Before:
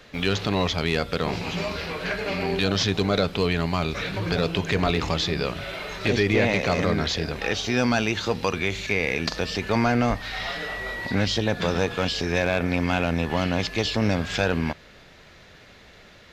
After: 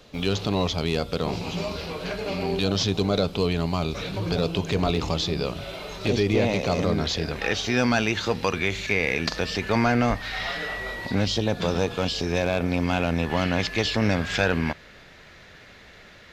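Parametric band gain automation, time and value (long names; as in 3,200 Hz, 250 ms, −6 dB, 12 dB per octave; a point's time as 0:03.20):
parametric band 1,800 Hz 0.87 octaves
0:06.91 −10 dB
0:07.38 +1.5 dB
0:10.67 +1.5 dB
0:11.26 −6.5 dB
0:12.73 −6.5 dB
0:13.53 +3.5 dB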